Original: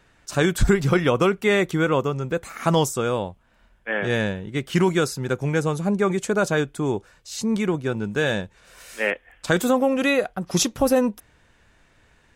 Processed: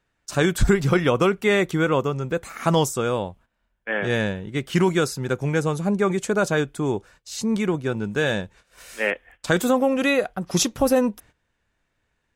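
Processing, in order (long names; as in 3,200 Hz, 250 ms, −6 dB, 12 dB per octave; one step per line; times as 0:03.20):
noise gate −48 dBFS, range −15 dB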